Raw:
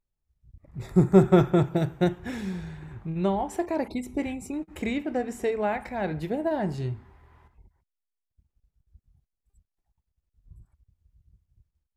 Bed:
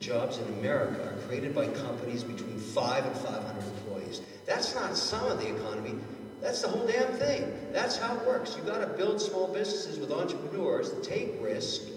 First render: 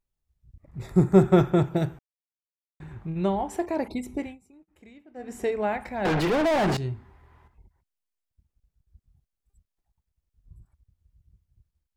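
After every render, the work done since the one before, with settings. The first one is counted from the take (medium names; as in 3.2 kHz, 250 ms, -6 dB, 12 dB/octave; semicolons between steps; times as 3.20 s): 1.99–2.80 s: mute; 4.13–5.40 s: dip -22 dB, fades 0.26 s; 6.05–6.77 s: overdrive pedal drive 37 dB, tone 2.4 kHz, clips at -16.5 dBFS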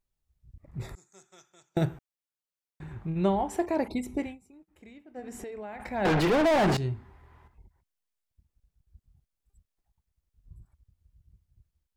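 0.95–1.77 s: band-pass filter 6.4 kHz, Q 6.3; 5.19–5.80 s: compression 12:1, threshold -36 dBFS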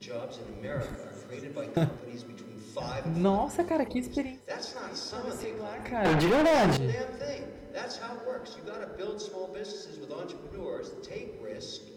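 add bed -7.5 dB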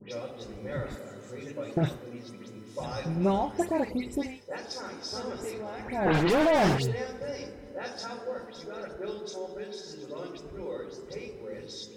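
phase dispersion highs, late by 106 ms, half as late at 2.8 kHz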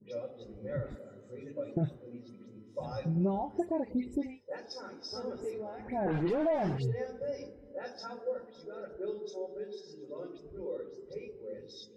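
compression 4:1, threshold -29 dBFS, peak gain reduction 9 dB; spectral contrast expander 1.5:1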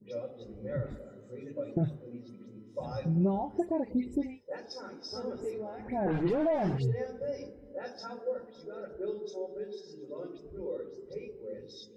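bass shelf 360 Hz +3.5 dB; hum notches 50/100/150 Hz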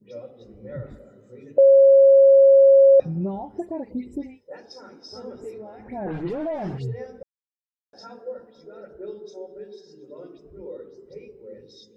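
1.58–3.00 s: bleep 546 Hz -9 dBFS; 7.23–7.93 s: mute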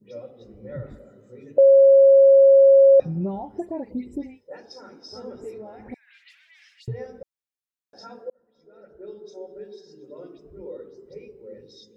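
5.94–6.88 s: steep high-pass 2 kHz; 8.30–9.51 s: fade in linear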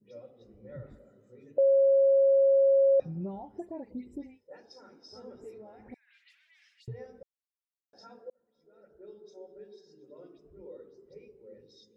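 trim -9.5 dB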